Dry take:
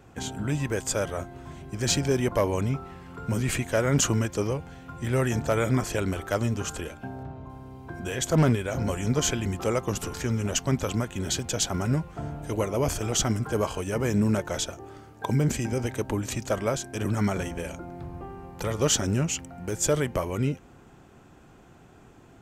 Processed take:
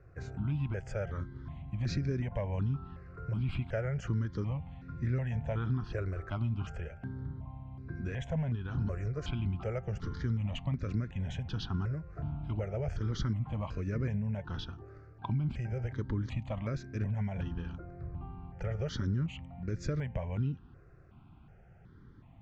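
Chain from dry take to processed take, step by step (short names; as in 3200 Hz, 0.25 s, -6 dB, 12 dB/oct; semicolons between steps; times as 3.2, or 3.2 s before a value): tone controls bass +9 dB, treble -15 dB; compressor 5:1, threshold -20 dBFS, peak gain reduction 10 dB; ladder low-pass 6200 Hz, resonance 35%; step phaser 2.7 Hz 870–3100 Hz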